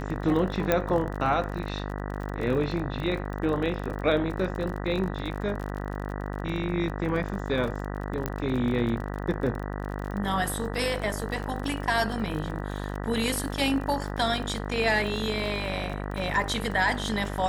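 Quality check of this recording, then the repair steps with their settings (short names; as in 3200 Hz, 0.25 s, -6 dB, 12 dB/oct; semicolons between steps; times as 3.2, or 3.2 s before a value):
buzz 50 Hz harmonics 39 -33 dBFS
crackle 34/s -33 dBFS
0.72 pop -9 dBFS
8.26 pop -14 dBFS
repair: de-click; de-hum 50 Hz, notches 39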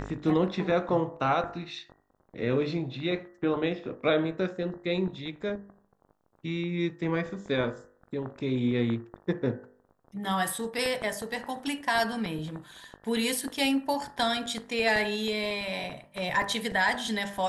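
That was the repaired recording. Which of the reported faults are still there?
none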